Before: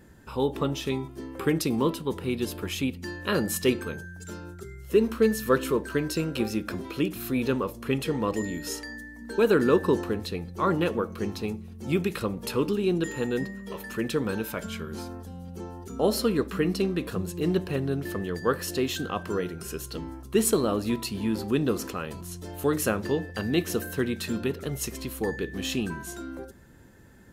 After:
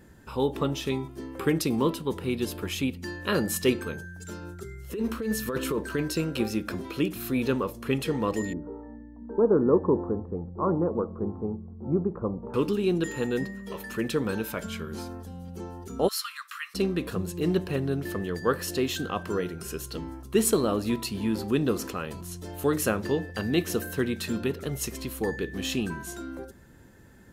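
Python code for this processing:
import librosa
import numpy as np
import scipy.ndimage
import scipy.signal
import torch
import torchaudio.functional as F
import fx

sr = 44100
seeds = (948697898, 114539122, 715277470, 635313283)

y = fx.over_compress(x, sr, threshold_db=-25.0, ratio=-1.0, at=(4.41, 6.01), fade=0.02)
y = fx.steep_lowpass(y, sr, hz=1100.0, slope=36, at=(8.53, 12.54))
y = fx.steep_highpass(y, sr, hz=1100.0, slope=72, at=(16.07, 16.74), fade=0.02)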